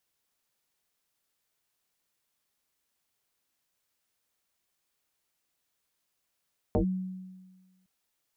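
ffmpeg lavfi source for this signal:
ffmpeg -f lavfi -i "aevalsrc='0.0944*pow(10,-3*t/1.4)*sin(2*PI*186*t+4*clip(1-t/0.1,0,1)*sin(2*PI*0.76*186*t))':duration=1.11:sample_rate=44100" out.wav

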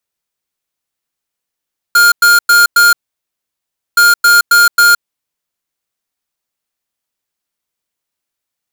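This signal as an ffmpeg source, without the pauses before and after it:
ffmpeg -f lavfi -i "aevalsrc='0.473*(2*lt(mod(1410*t,1),0.5)-1)*clip(min(mod(mod(t,2.02),0.27),0.17-mod(mod(t,2.02),0.27))/0.005,0,1)*lt(mod(t,2.02),1.08)':duration=4.04:sample_rate=44100" out.wav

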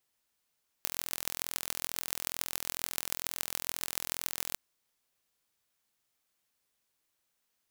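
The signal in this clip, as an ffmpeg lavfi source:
ffmpeg -f lavfi -i "aevalsrc='0.708*eq(mod(n,1045),0)*(0.5+0.5*eq(mod(n,6270),0))':duration=3.72:sample_rate=44100" out.wav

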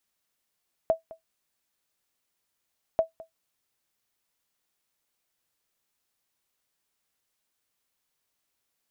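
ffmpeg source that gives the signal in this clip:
ffmpeg -f lavfi -i "aevalsrc='0.211*(sin(2*PI*651*mod(t,2.09))*exp(-6.91*mod(t,2.09)/0.13)+0.0944*sin(2*PI*651*max(mod(t,2.09)-0.21,0))*exp(-6.91*max(mod(t,2.09)-0.21,0)/0.13))':duration=4.18:sample_rate=44100" out.wav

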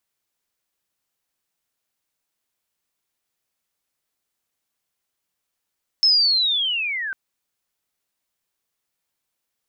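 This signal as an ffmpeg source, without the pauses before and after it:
ffmpeg -f lavfi -i "aevalsrc='pow(10,(-12-13*t/1.1)/20)*sin(2*PI*(5300*t-3800*t*t/(2*1.1)))':duration=1.1:sample_rate=44100" out.wav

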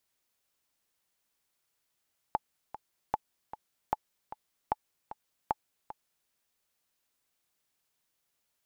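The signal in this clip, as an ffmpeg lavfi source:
ffmpeg -f lavfi -i "aevalsrc='pow(10,(-14-13.5*gte(mod(t,2*60/152),60/152))/20)*sin(2*PI*859*mod(t,60/152))*exp(-6.91*mod(t,60/152)/0.03)':duration=3.94:sample_rate=44100" out.wav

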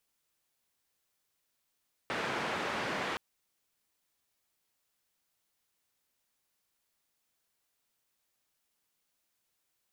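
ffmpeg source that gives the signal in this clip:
ffmpeg -f lavfi -i "anoisesrc=color=white:duration=1.07:sample_rate=44100:seed=1,highpass=frequency=140,lowpass=frequency=1800,volume=-19.4dB" out.wav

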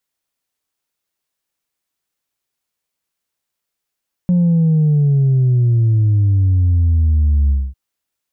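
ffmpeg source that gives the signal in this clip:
ffmpeg -f lavfi -i "aevalsrc='0.299*clip((3.45-t)/0.24,0,1)*tanh(1.12*sin(2*PI*180*3.45/log(65/180)*(exp(log(65/180)*t/3.45)-1)))/tanh(1.12)':duration=3.45:sample_rate=44100" out.wav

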